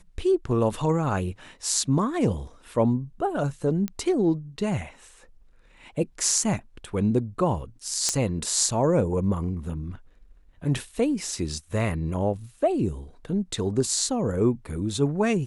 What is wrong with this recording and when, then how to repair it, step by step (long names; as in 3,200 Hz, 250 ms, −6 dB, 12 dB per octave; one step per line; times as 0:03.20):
0:03.88: click −16 dBFS
0:08.09: click −9 dBFS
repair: click removal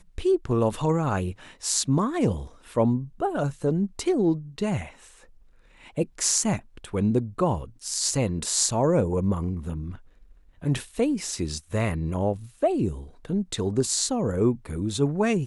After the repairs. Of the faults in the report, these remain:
none of them is left